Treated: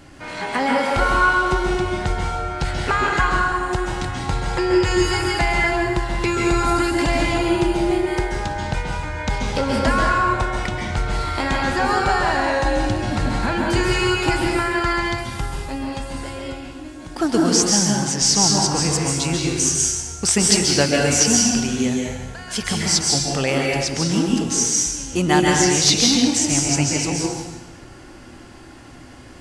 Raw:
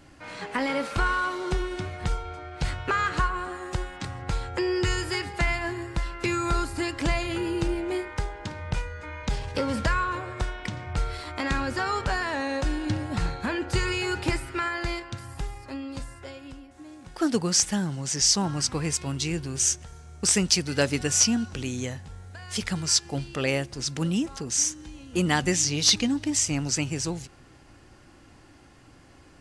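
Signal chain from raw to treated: dynamic bell 780 Hz, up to +6 dB, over -47 dBFS, Q 2.6; in parallel at -1 dB: compression, threshold -36 dBFS, peak gain reduction 19 dB; on the sum: plate-style reverb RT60 1.1 s, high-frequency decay 0.95×, pre-delay 120 ms, DRR -1.5 dB; trim +2 dB

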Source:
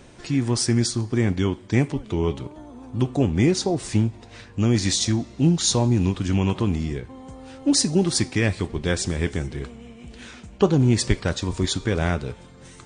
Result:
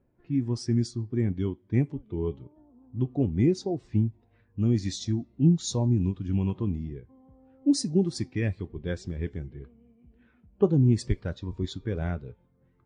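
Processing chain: level-controlled noise filter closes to 1.9 kHz, open at -14.5 dBFS; spectral contrast expander 1.5:1; trim -5 dB

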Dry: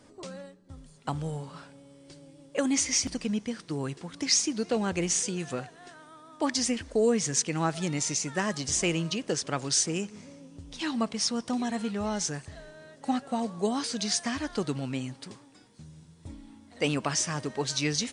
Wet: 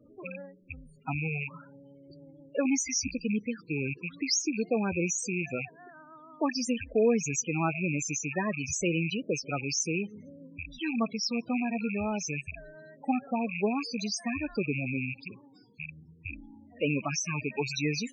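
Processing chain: rattle on loud lows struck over -42 dBFS, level -20 dBFS; 15.12–15.86 s: flutter echo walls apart 10.1 m, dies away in 0.26 s; loudest bins only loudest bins 16

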